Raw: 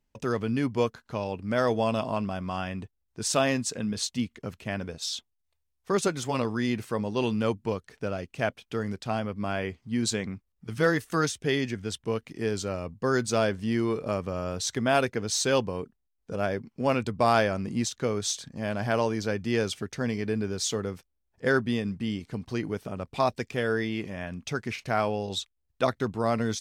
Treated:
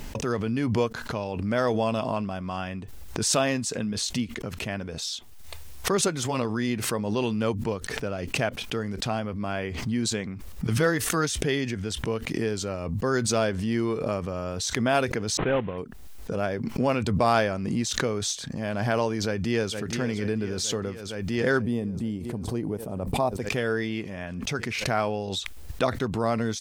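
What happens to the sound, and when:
15.37–15.78 CVSD 16 kbps
19.21–19.76 echo throw 0.46 s, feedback 75%, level -12.5 dB
21.62–23.42 band shelf 2900 Hz -11.5 dB 2.7 oct
whole clip: backwards sustainer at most 35 dB/s

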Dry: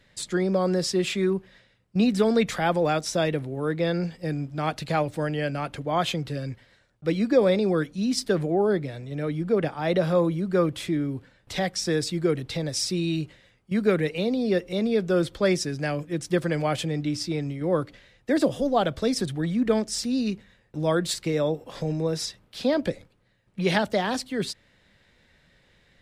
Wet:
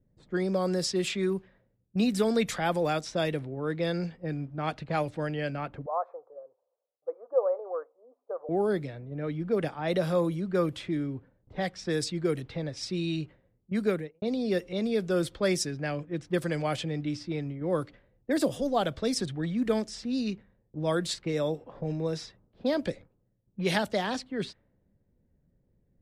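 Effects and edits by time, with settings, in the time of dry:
5.86–8.49 elliptic band-pass 490–1200 Hz, stop band 50 dB
13.81–14.22 studio fade out
whole clip: low-pass opened by the level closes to 330 Hz, open at -19.5 dBFS; high shelf 7600 Hz +11.5 dB; gain -4.5 dB

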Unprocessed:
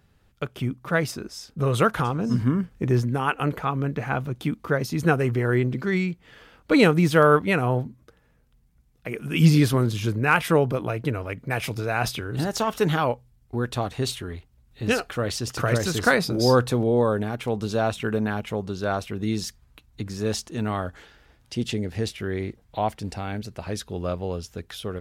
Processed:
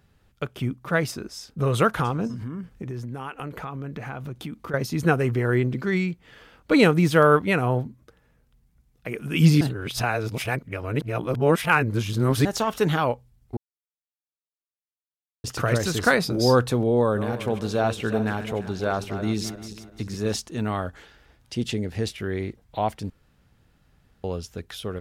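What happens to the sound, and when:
2.27–4.74 compressor, threshold -30 dBFS
9.61–12.45 reverse
13.57–15.44 mute
16.98–20.36 regenerating reverse delay 0.172 s, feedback 55%, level -10.5 dB
23.1–24.24 room tone

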